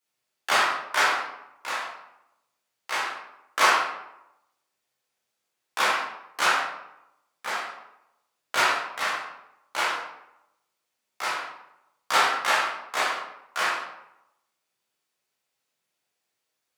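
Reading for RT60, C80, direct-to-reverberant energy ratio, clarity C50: 0.85 s, 5.0 dB, -8.0 dB, 1.0 dB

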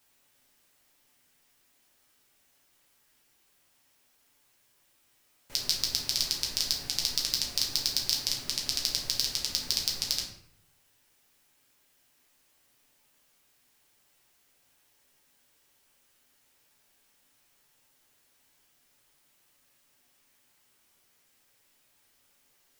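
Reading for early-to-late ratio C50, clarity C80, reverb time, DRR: 5.5 dB, 8.5 dB, 0.70 s, -2.5 dB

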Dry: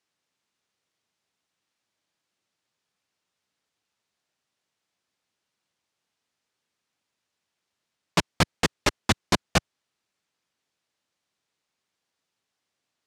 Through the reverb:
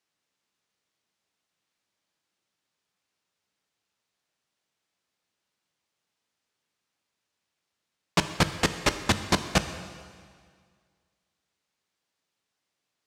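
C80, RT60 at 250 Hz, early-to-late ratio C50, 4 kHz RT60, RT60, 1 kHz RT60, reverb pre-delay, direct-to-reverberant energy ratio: 11.5 dB, 1.9 s, 10.5 dB, 1.8 s, 1.9 s, 1.9 s, 5 ms, 9.0 dB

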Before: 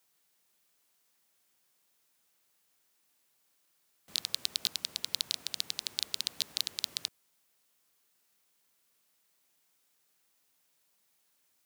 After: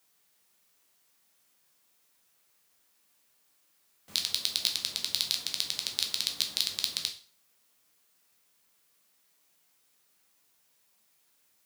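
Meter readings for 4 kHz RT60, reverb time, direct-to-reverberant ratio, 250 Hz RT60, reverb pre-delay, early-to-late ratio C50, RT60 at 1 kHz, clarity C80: 0.40 s, 0.40 s, 3.0 dB, 0.45 s, 5 ms, 10.5 dB, 0.40 s, 16.0 dB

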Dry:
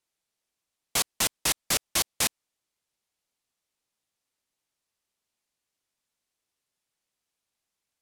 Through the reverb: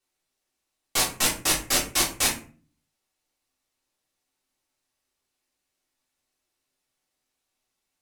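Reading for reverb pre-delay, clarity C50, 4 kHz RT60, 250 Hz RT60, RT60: 3 ms, 8.5 dB, 0.25 s, 0.65 s, 0.40 s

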